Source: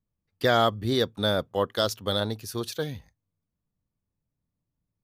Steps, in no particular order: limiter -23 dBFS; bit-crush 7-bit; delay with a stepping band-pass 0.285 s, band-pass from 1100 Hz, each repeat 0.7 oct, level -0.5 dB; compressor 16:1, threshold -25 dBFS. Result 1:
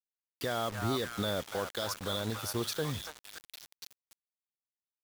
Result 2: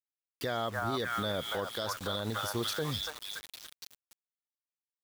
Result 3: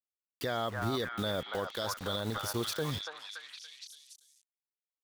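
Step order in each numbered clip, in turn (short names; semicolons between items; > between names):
compressor > limiter > delay with a stepping band-pass > bit-crush; delay with a stepping band-pass > bit-crush > compressor > limiter; bit-crush > compressor > delay with a stepping band-pass > limiter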